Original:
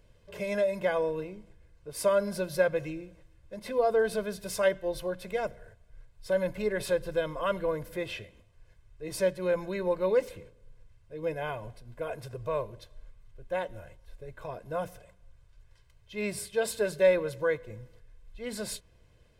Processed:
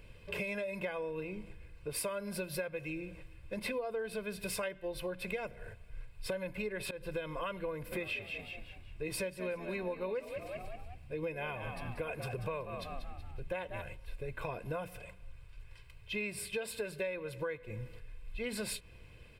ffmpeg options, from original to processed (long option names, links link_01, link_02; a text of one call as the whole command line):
ffmpeg -i in.wav -filter_complex "[0:a]asettb=1/sr,asplit=3[link_01][link_02][link_03];[link_01]atrim=end=1.984[link_04];[link_02]atrim=start=1.98:end=3,asetpts=PTS-STARTPTS,afade=type=in:duration=0.004:curve=qsin,afade=type=out:start_time=1.016:duration=0.004:curve=qsin,highshelf=frequency=8200:gain=4.5[link_05];[link_03]atrim=start=2.996[link_06];[link_04][link_05]acrossfade=duration=0.004:curve1=hsin:curve2=qsin[link_07];[link_07][link_06]acrossfade=duration=0.004:curve1=qsin:curve2=hsin,asplit=3[link_08][link_09][link_10];[link_08]afade=type=out:start_time=7.91:duration=0.02[link_11];[link_09]asplit=5[link_12][link_13][link_14][link_15][link_16];[link_13]adelay=187,afreqshift=59,volume=-10.5dB[link_17];[link_14]adelay=374,afreqshift=118,volume=-18.9dB[link_18];[link_15]adelay=561,afreqshift=177,volume=-27.3dB[link_19];[link_16]adelay=748,afreqshift=236,volume=-35.7dB[link_20];[link_12][link_17][link_18][link_19][link_20]amix=inputs=5:normalize=0,afade=type=in:start_time=7.91:duration=0.02,afade=type=out:start_time=13.81:duration=0.02[link_21];[link_10]afade=type=in:start_time=13.81:duration=0.02[link_22];[link_11][link_21][link_22]amix=inputs=3:normalize=0,asplit=2[link_23][link_24];[link_23]atrim=end=6.91,asetpts=PTS-STARTPTS,afade=type=out:start_time=6.906:duration=0.004:curve=hsin:silence=0.0841395[link_25];[link_24]atrim=start=6.91,asetpts=PTS-STARTPTS,afade=type=in:duration=0.46:silence=0.0841395[link_26];[link_25][link_26]concat=n=2:v=0:a=1,equalizer=frequency=630:width_type=o:width=0.33:gain=-5,equalizer=frequency=2500:width_type=o:width=0.33:gain=11,equalizer=frequency=6300:width_type=o:width=0.33:gain=-9,acompressor=threshold=-41dB:ratio=10,volume=6dB" out.wav